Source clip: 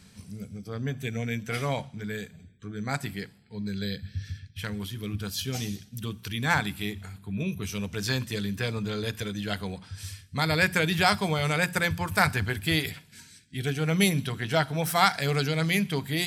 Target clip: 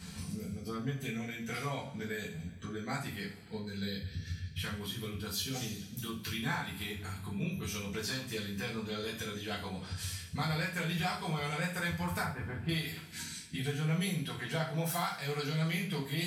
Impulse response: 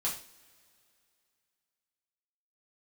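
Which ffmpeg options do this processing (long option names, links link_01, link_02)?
-filter_complex "[0:a]asettb=1/sr,asplit=3[link_01][link_02][link_03];[link_01]atrim=end=12.224[link_04];[link_02]atrim=start=12.22:end=12.69,asetpts=PTS-STARTPTS,afade=type=in:duration=0.004:curve=qsin,afade=type=out:start_time=0.466:duration=0.004:curve=qsin,lowpass=1300[link_05];[link_03]atrim=start=12.686[link_06];[link_04][link_05]acrossfade=duration=0.004:curve1=hsin:curve2=qsin[link_07];[link_07][link_06]acrossfade=duration=0.004:curve1=qsin:curve2=hsin,acompressor=threshold=-41dB:ratio=6,asoftclip=type=tanh:threshold=-25.5dB[link_08];[1:a]atrim=start_sample=2205[link_09];[link_08][link_09]afir=irnorm=-1:irlink=0,volume=4dB"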